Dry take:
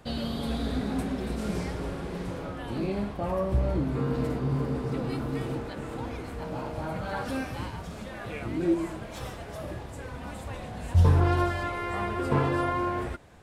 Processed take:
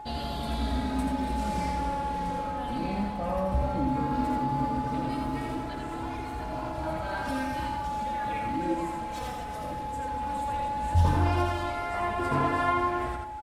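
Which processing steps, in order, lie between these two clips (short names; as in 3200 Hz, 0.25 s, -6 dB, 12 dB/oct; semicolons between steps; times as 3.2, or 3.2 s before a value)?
dynamic EQ 380 Hz, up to -7 dB, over -45 dBFS, Q 2.7; whine 850 Hz -35 dBFS; flange 0.16 Hz, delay 2.8 ms, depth 1.2 ms, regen +27%; on a send: loudspeakers at several distances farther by 29 m -4 dB, 83 m -12 dB; on the sum: gain +3 dB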